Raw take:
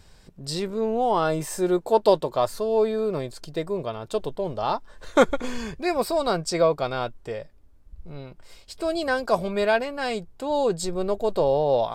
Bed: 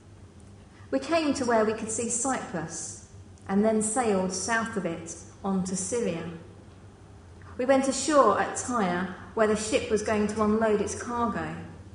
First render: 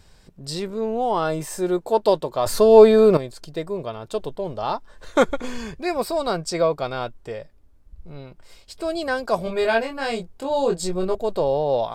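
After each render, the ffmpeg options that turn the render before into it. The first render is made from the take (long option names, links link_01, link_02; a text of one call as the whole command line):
ffmpeg -i in.wav -filter_complex "[0:a]asettb=1/sr,asplit=3[link_01][link_02][link_03];[link_01]atrim=end=9.444[link_04];[link_02]atrim=start=9.44:end=11.15,asetpts=PTS-STARTPTS,afade=type=in:duration=0.004:curve=qsin,afade=type=out:start_time=1.706:duration=0.004:curve=qsin,asplit=2[link_05][link_06];[link_06]adelay=22,volume=-3dB[link_07];[link_05][link_07]amix=inputs=2:normalize=0,atrim=end_sample=75411[link_08];[link_03]atrim=start=11.146[link_09];[link_04][link_08]acrossfade=duration=0.004:curve1=hsin:curve2=qsin[link_10];[link_10][link_09]acrossfade=duration=0.004:curve1=qsin:curve2=hsin,asplit=3[link_11][link_12][link_13];[link_11]atrim=end=2.462[link_14];[link_12]atrim=start=2.458:end=3.172,asetpts=PTS-STARTPTS,volume=11.5dB[link_15];[link_13]atrim=start=3.168[link_16];[link_14][link_15]acrossfade=duration=0.004:curve1=hsin:curve2=hsin[link_17];[link_17][link_16]acrossfade=duration=0.004:curve1=hsin:curve2=hsin" out.wav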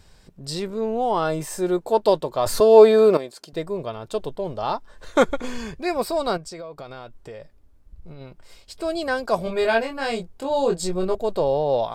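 ffmpeg -i in.wav -filter_complex "[0:a]asettb=1/sr,asplit=3[link_01][link_02][link_03];[link_01]atrim=end=2.604[link_04];[link_02]atrim=start=2.6:end=3.53,asetpts=PTS-STARTPTS,afade=type=in:duration=0.004:curve=qsin,afade=type=out:start_time=0.926:duration=0.004:curve=qsin,highpass=260[link_05];[link_03]atrim=start=3.526[link_06];[link_04][link_05]acrossfade=duration=0.004:curve1=hsin:curve2=qsin[link_07];[link_07][link_06]acrossfade=duration=0.004:curve1=qsin:curve2=hsin,asettb=1/sr,asplit=3[link_08][link_09][link_10];[link_08]atrim=end=6.374[link_11];[link_09]atrim=start=6.37:end=8.21,asetpts=PTS-STARTPTS,afade=type=in:duration=0.004:curve=qsin,afade=type=out:start_time=1.836:duration=0.004:curve=qsin,acompressor=threshold=-34dB:ratio=6:attack=3.2:release=140:knee=1:detection=peak[link_12];[link_10]atrim=start=8.206[link_13];[link_11][link_12]acrossfade=duration=0.004:curve1=hsin:curve2=qsin[link_14];[link_14][link_13]acrossfade=duration=0.004:curve1=qsin:curve2=hsin" out.wav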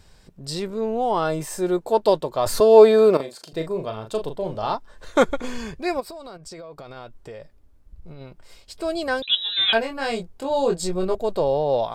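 ffmpeg -i in.wav -filter_complex "[0:a]asettb=1/sr,asplit=3[link_01][link_02][link_03];[link_01]atrim=end=3.164[link_04];[link_02]atrim=start=3.16:end=4.75,asetpts=PTS-STARTPTS,afade=type=in:duration=0.004:curve=qsin,afade=type=out:start_time=1.586:duration=0.004:curve=qsin,asplit=2[link_05][link_06];[link_06]adelay=37,volume=-7dB[link_07];[link_05][link_07]amix=inputs=2:normalize=0,atrim=end_sample=70119[link_08];[link_03]atrim=start=4.746[link_09];[link_04][link_08]acrossfade=duration=0.004:curve1=hsin:curve2=qsin[link_10];[link_10][link_09]acrossfade=duration=0.004:curve1=qsin:curve2=hsin,asplit=3[link_11][link_12][link_13];[link_11]afade=type=out:start_time=5.99:duration=0.02[link_14];[link_12]acompressor=threshold=-34dB:ratio=16:attack=3.2:release=140:knee=1:detection=peak,afade=type=in:start_time=5.99:duration=0.02,afade=type=out:start_time=6.95:duration=0.02[link_15];[link_13]afade=type=in:start_time=6.95:duration=0.02[link_16];[link_14][link_15][link_16]amix=inputs=3:normalize=0,asettb=1/sr,asplit=3[link_17][link_18][link_19];[link_17]atrim=end=9.224[link_20];[link_18]atrim=start=9.22:end=9.73,asetpts=PTS-STARTPTS,afade=type=in:duration=0.004:curve=qsin,afade=type=out:start_time=0.506:duration=0.004:curve=qsin,lowpass=frequency=3400:width_type=q:width=0.5098,lowpass=frequency=3400:width_type=q:width=0.6013,lowpass=frequency=3400:width_type=q:width=0.9,lowpass=frequency=3400:width_type=q:width=2.563,afreqshift=-4000[link_21];[link_19]atrim=start=9.726[link_22];[link_20][link_21]acrossfade=duration=0.004:curve1=hsin:curve2=qsin[link_23];[link_23][link_22]acrossfade=duration=0.004:curve1=qsin:curve2=hsin" out.wav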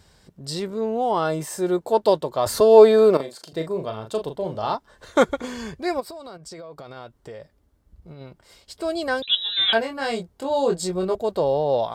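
ffmpeg -i in.wav -af "highpass=58,bandreject=frequency=2500:width=13" out.wav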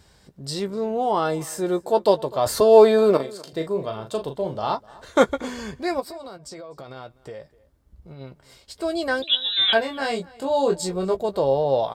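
ffmpeg -i in.wav -filter_complex "[0:a]asplit=2[link_01][link_02];[link_02]adelay=15,volume=-10.5dB[link_03];[link_01][link_03]amix=inputs=2:normalize=0,asplit=2[link_04][link_05];[link_05]adelay=250.7,volume=-22dB,highshelf=frequency=4000:gain=-5.64[link_06];[link_04][link_06]amix=inputs=2:normalize=0" out.wav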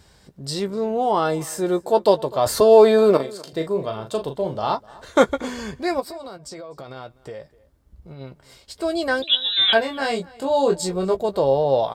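ffmpeg -i in.wav -af "volume=2dB,alimiter=limit=-3dB:level=0:latency=1" out.wav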